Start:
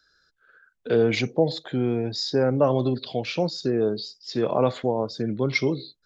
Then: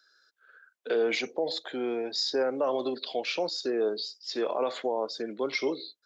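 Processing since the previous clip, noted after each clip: Bessel high-pass 450 Hz, order 4; limiter -19 dBFS, peak gain reduction 8.5 dB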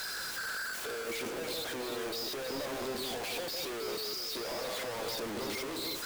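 infinite clipping; echo with dull and thin repeats by turns 0.16 s, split 1100 Hz, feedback 63%, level -3 dB; gain -7.5 dB

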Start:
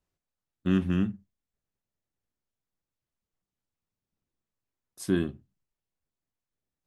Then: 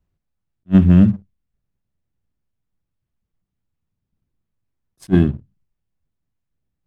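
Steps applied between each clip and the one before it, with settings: tone controls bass +12 dB, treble -8 dB; sample leveller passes 1; attack slew limiter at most 530 dB/s; gain +5 dB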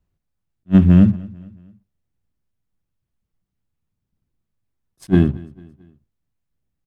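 feedback echo 0.223 s, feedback 46%, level -22.5 dB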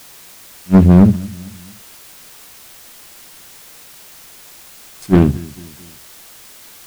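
in parallel at -7 dB: requantised 6-bit, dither triangular; on the sum: soft clip -3 dBFS, distortion -17 dB; Doppler distortion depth 0.41 ms; gain +2.5 dB

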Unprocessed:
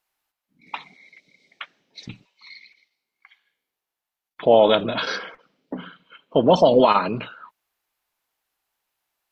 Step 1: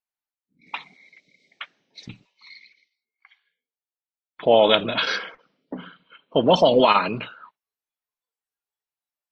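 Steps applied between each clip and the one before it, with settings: spectral noise reduction 16 dB; dynamic EQ 2600 Hz, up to +8 dB, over -37 dBFS, Q 0.88; gain -2 dB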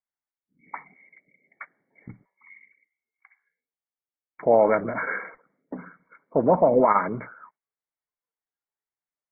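brick-wall FIR low-pass 2300 Hz; gain -2 dB

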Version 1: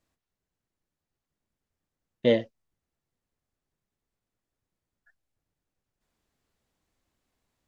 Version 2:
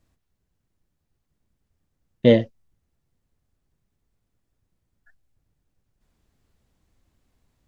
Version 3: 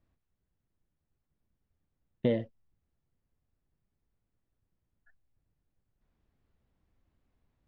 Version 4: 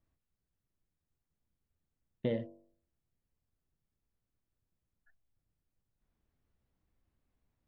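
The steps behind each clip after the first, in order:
low shelf 210 Hz +12 dB; gain +4 dB
Bessel low-pass 2600 Hz, order 2; compressor 6:1, threshold -17 dBFS, peak gain reduction 8 dB; gain -6.5 dB
de-hum 48.04 Hz, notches 22; gain -4.5 dB

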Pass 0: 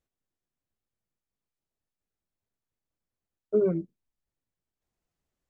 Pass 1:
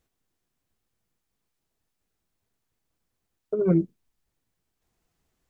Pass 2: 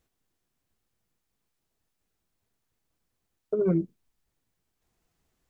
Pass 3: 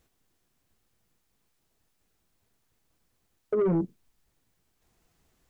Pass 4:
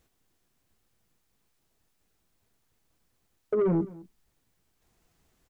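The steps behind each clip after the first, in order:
negative-ratio compressor -26 dBFS, ratio -0.5; notch 570 Hz, Q 12; gain +6.5 dB
compressor, threshold -20 dBFS, peak gain reduction 5 dB
limiter -20 dBFS, peak gain reduction 5.5 dB; soft clip -26 dBFS, distortion -14 dB; gain +6 dB
echo 0.211 s -20.5 dB

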